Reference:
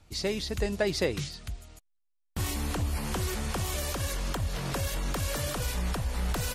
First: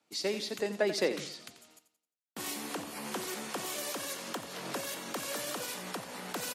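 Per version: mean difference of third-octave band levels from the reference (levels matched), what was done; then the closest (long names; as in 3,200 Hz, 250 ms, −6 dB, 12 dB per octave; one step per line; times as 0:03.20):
4.0 dB: high-pass filter 220 Hz 24 dB per octave
in parallel at +2.5 dB: downward compressor, threshold −43 dBFS, peak gain reduction 19 dB
on the sum: repeating echo 88 ms, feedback 46%, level −11.5 dB
multiband upward and downward expander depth 40%
level −5.5 dB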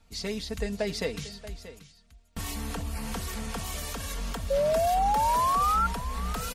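6.5 dB: parametric band 360 Hz −7 dB 0.21 octaves
comb filter 4.4 ms, depth 60%
sound drawn into the spectrogram rise, 0:04.50–0:05.87, 540–1,400 Hz −21 dBFS
single-tap delay 632 ms −15 dB
level −3.5 dB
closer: first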